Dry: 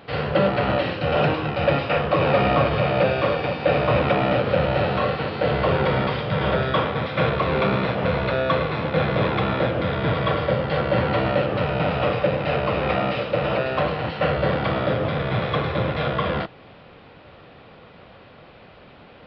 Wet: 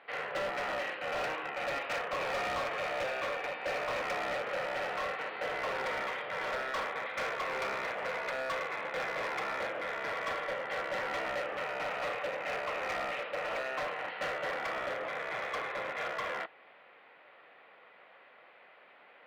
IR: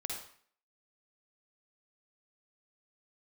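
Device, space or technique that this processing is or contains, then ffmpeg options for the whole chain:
megaphone: -af "highpass=610,lowpass=2700,equalizer=frequency=2000:width_type=o:width=0.55:gain=7.5,asoftclip=type=hard:threshold=-22dB,volume=-9dB"

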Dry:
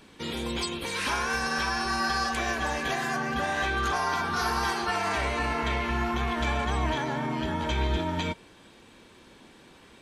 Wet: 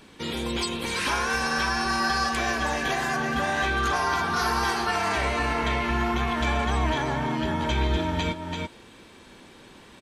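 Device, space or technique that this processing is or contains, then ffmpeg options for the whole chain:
ducked delay: -filter_complex "[0:a]asplit=3[link_01][link_02][link_03];[link_02]adelay=336,volume=-3.5dB[link_04];[link_03]apad=whole_len=456357[link_05];[link_04][link_05]sidechaincompress=threshold=-33dB:ratio=8:attack=16:release=428[link_06];[link_01][link_06]amix=inputs=2:normalize=0,volume=2.5dB"

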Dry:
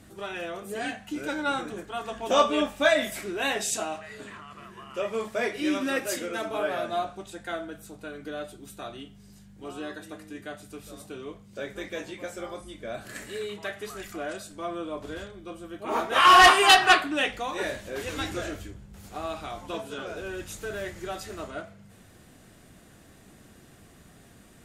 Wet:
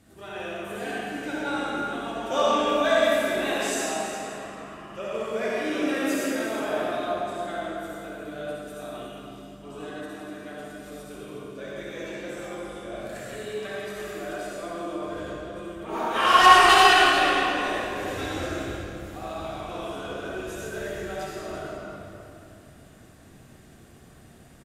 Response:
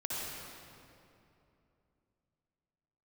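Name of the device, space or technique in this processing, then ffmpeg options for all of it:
cave: -filter_complex "[0:a]aecho=1:1:362:0.266[link_01];[1:a]atrim=start_sample=2205[link_02];[link_01][link_02]afir=irnorm=-1:irlink=0,volume=-3dB"

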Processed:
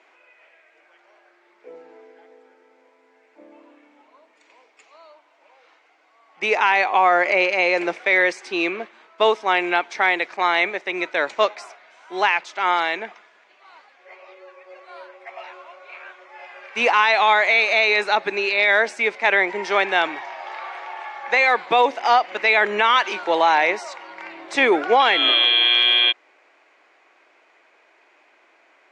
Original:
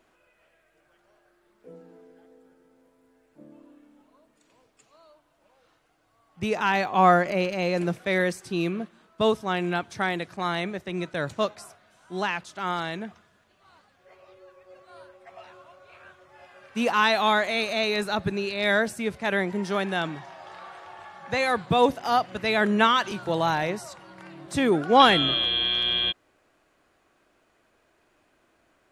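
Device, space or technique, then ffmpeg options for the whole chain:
laptop speaker: -af "highpass=frequency=340:width=0.5412,highpass=frequency=340:width=1.3066,lowpass=frequency=6700:width=0.5412,lowpass=frequency=6700:width=1.3066,equalizer=frequency=880:width_type=o:width=0.54:gain=6,equalizer=frequency=2200:width_type=o:width=0.56:gain=11.5,alimiter=limit=-12dB:level=0:latency=1:release=138,volume=5.5dB"

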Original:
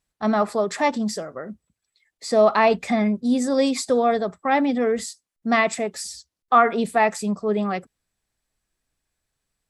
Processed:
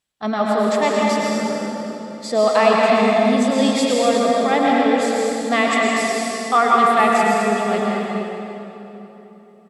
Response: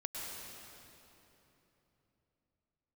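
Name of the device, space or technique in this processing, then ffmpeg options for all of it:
stadium PA: -filter_complex "[0:a]highpass=frequency=140:poles=1,equalizer=frequency=3200:width_type=o:width=0.56:gain=7,aecho=1:1:166.2|244.9:0.251|0.355[link_01];[1:a]atrim=start_sample=2205[link_02];[link_01][link_02]afir=irnorm=-1:irlink=0,volume=3dB"

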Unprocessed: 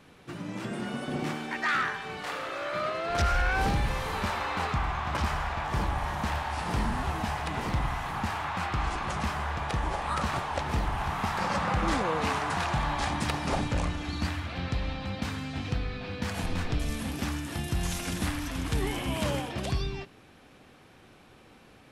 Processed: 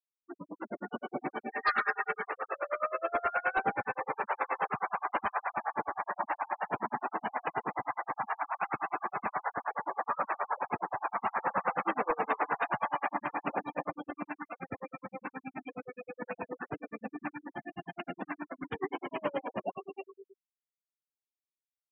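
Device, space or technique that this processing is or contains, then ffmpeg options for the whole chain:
helicopter radio: -filter_complex "[0:a]asettb=1/sr,asplit=3[link_01][link_02][link_03];[link_01]atrim=end=1.364[link_04];[link_02]atrim=start=1.36:end=2.25,asetpts=PTS-STARTPTS,afade=type=in:duration=0.004:curve=qsin,afade=type=out:start_time=0.886:duration=0.004:curve=qsin,aecho=1:1:4.9:0.85,atrim=end_sample=39249[link_05];[link_03]atrim=start=2.246[link_06];[link_04][link_05]acrossfade=duration=0.004:curve1=hsin:curve2=qsin[link_07];[link_07][link_06]acrossfade=duration=0.004:curve1=qsin:curve2=hsin,highpass=360,lowpass=2900,aemphasis=mode=reproduction:type=cd,aecho=1:1:50|199|252|352:0.251|0.168|0.106|0.299,aeval=exprs='val(0)*pow(10,-23*(0.5-0.5*cos(2*PI*9.5*n/s))/20)':channel_layout=same,asoftclip=type=hard:threshold=-26dB,afftfilt=real='re*gte(hypot(re,im),0.0158)':imag='im*gte(hypot(re,im),0.0158)':win_size=1024:overlap=0.75,volume=4.5dB"

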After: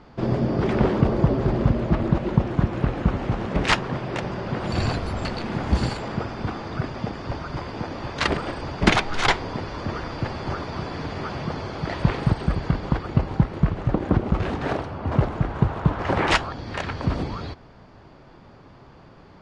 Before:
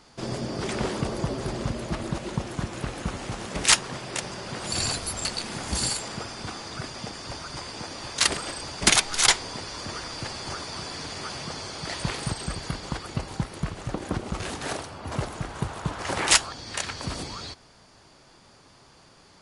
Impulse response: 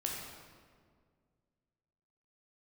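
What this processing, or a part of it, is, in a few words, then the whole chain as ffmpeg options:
phone in a pocket: -af "lowpass=3400,lowshelf=frequency=340:gain=4.5,highshelf=frequency=2200:gain=-10,volume=6.5dB"

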